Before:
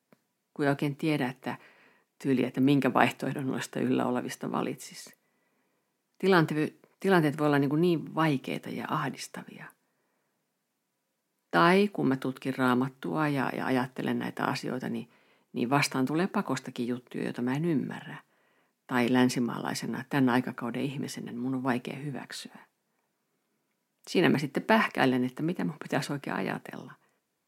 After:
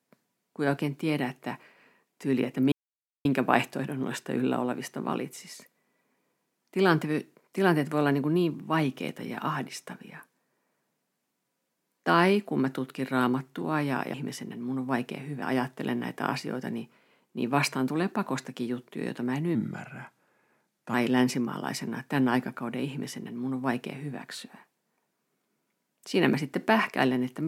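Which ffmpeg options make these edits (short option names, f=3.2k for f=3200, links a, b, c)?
-filter_complex "[0:a]asplit=6[a][b][c][d][e][f];[a]atrim=end=2.72,asetpts=PTS-STARTPTS,afade=t=out:st=2.716:d=0.004:c=hsin,apad=pad_dur=0.53[g];[b]atrim=start=2.72:end=13.612,asetpts=PTS-STARTPTS,afade=t=in:d=0.004:c=hsin[h];[c]atrim=start=20.898:end=22.182[i];[d]atrim=start=13.608:end=17.744[j];[e]atrim=start=17.74:end=18.95,asetpts=PTS-STARTPTS,asetrate=38367,aresample=44100,atrim=end_sample=61334,asetpts=PTS-STARTPTS[k];[f]atrim=start=18.946[l];[g][h]concat=n=2:v=0:a=1[m];[m][i]acrossfade=d=0.004:c1=hsin:c2=hsin[n];[n][j]acrossfade=d=0.004:c1=hsin:c2=hsin[o];[o][k]acrossfade=d=0.004:c1=hsin:c2=hsin[p];[p][l]acrossfade=d=0.004:c1=hsin:c2=hsin"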